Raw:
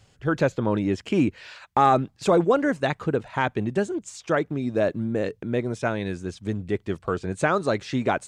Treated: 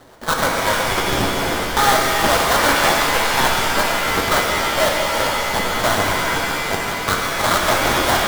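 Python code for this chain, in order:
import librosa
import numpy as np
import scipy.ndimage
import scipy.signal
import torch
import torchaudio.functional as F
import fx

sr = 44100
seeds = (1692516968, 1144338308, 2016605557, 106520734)

p1 = scipy.signal.sosfilt(scipy.signal.ellip(3, 1.0, 40, [630.0, 5800.0], 'bandpass', fs=sr, output='sos'), x)
p2 = fx.tilt_eq(p1, sr, slope=4.0)
p3 = fx.over_compress(p2, sr, threshold_db=-27.0, ratio=-1.0)
p4 = p2 + F.gain(torch.from_numpy(p3), 1.0).numpy()
p5 = fx.tube_stage(p4, sr, drive_db=19.0, bias=0.65)
p6 = fx.sample_hold(p5, sr, seeds[0], rate_hz=2600.0, jitter_pct=20)
p7 = fx.rev_shimmer(p6, sr, seeds[1], rt60_s=3.2, semitones=7, shimmer_db=-2, drr_db=-0.5)
y = F.gain(torch.from_numpy(p7), 6.5).numpy()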